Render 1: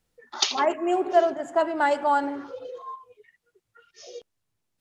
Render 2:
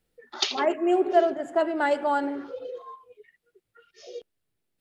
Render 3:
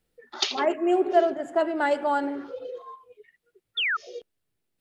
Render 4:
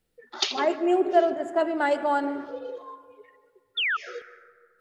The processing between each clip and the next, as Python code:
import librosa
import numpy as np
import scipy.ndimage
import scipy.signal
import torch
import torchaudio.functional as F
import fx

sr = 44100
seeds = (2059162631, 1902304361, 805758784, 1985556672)

y1 = fx.graphic_eq_15(x, sr, hz=(100, 400, 1000, 6300), db=(-5, 4, -6, -7))
y2 = fx.spec_paint(y1, sr, seeds[0], shape='fall', start_s=3.77, length_s=0.2, low_hz=1200.0, high_hz=3700.0, level_db=-25.0)
y3 = fx.rev_plate(y2, sr, seeds[1], rt60_s=1.9, hf_ratio=0.35, predelay_ms=115, drr_db=15.5)